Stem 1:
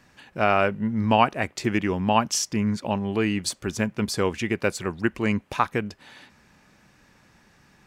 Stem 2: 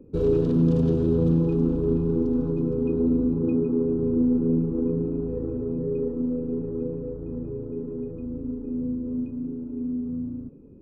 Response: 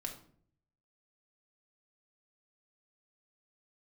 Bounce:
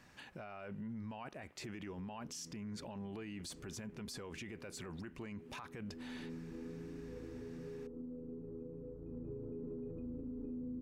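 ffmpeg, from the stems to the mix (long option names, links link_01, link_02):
-filter_complex "[0:a]acompressor=threshold=-27dB:ratio=5,volume=-5dB,asplit=2[link_01][link_02];[1:a]acompressor=threshold=-30dB:ratio=6,adelay=1800,volume=-7dB,afade=type=in:start_time=9.03:duration=0.53:silence=0.446684[link_03];[link_02]apad=whole_len=556501[link_04];[link_03][link_04]sidechaincompress=threshold=-41dB:ratio=8:attack=16:release=428[link_05];[link_01][link_05]amix=inputs=2:normalize=0,alimiter=level_in=14dB:limit=-24dB:level=0:latency=1:release=21,volume=-14dB"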